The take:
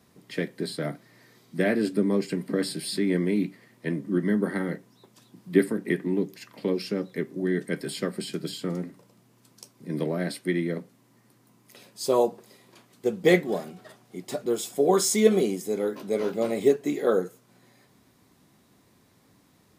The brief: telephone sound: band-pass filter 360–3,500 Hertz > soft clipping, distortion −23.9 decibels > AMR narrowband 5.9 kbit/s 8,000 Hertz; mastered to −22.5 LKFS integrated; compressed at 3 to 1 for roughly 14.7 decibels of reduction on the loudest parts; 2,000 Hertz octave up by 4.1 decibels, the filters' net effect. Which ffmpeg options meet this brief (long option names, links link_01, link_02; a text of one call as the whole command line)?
ffmpeg -i in.wav -af "equalizer=frequency=2000:width_type=o:gain=5,acompressor=threshold=-34dB:ratio=3,highpass=360,lowpass=3500,asoftclip=threshold=-24.5dB,volume=19.5dB" -ar 8000 -c:a libopencore_amrnb -b:a 5900 out.amr